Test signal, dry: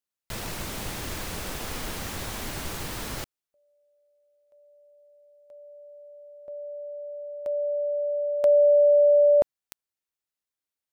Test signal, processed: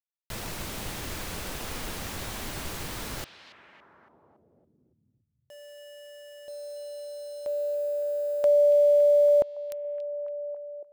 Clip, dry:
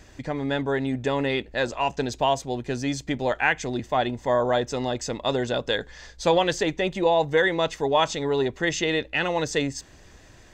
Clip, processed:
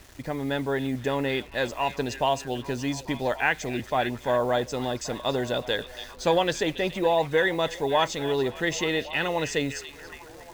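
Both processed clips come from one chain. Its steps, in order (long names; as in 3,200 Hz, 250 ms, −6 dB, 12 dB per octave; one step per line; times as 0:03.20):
bit-depth reduction 8 bits, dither none
echo through a band-pass that steps 281 ms, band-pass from 3,300 Hz, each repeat −0.7 octaves, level −8.5 dB
level −2 dB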